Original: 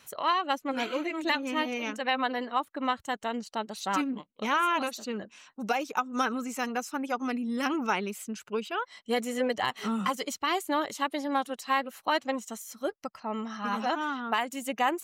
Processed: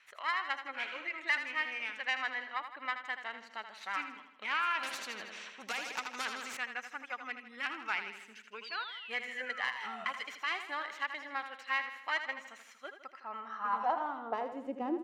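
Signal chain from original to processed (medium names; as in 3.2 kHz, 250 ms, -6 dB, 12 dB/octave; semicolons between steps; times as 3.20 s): tracing distortion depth 0.09 ms; band-pass sweep 2 kHz -> 270 Hz, 13.09–15.01 s; 8.64–10.05 s: painted sound fall 640–4900 Hz -49 dBFS; on a send: feedback delay 80 ms, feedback 52%, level -9.5 dB; 4.83–6.57 s: on the sum: spectrum-flattening compressor 2:1; trim +1 dB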